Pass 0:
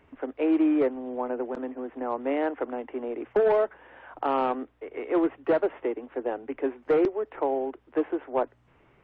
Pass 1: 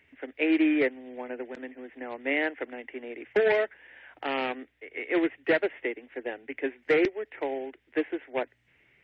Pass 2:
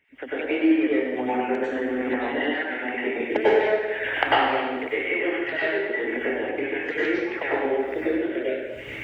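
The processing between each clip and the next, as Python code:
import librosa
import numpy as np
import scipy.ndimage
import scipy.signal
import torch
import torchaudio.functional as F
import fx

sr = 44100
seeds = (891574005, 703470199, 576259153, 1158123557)

y1 = scipy.signal.sosfilt(scipy.signal.butter(2, 43.0, 'highpass', fs=sr, output='sos'), x)
y1 = fx.high_shelf_res(y1, sr, hz=1500.0, db=9.0, q=3.0)
y1 = fx.upward_expand(y1, sr, threshold_db=-37.0, expansion=1.5)
y2 = fx.spec_dropout(y1, sr, seeds[0], share_pct=28)
y2 = fx.recorder_agc(y2, sr, target_db=-18.0, rise_db_per_s=77.0, max_gain_db=30)
y2 = fx.rev_plate(y2, sr, seeds[1], rt60_s=1.3, hf_ratio=0.8, predelay_ms=85, drr_db=-8.5)
y2 = y2 * librosa.db_to_amplitude(-7.5)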